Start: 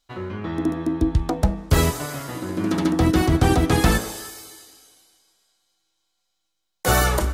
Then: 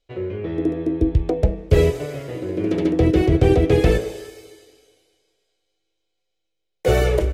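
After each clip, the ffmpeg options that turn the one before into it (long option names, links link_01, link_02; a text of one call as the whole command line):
ffmpeg -i in.wav -af "firequalizer=gain_entry='entry(140,0);entry(220,-9);entry(430,9);entry(850,-11);entry(1200,-14);entry(2300,-1);entry(4100,-10);entry(11000,-17)':delay=0.05:min_phase=1,volume=2dB" out.wav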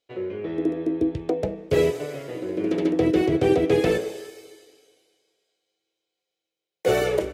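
ffmpeg -i in.wav -af "highpass=190,volume=-2dB" out.wav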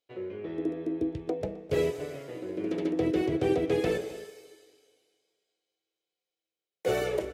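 ffmpeg -i in.wav -filter_complex "[0:a]asplit=2[link_01][link_02];[link_02]adelay=262.4,volume=-17dB,highshelf=frequency=4000:gain=-5.9[link_03];[link_01][link_03]amix=inputs=2:normalize=0,volume=-7dB" out.wav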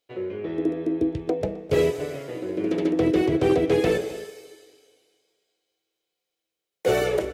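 ffmpeg -i in.wav -af "asoftclip=type=hard:threshold=-19.5dB,volume=6.5dB" out.wav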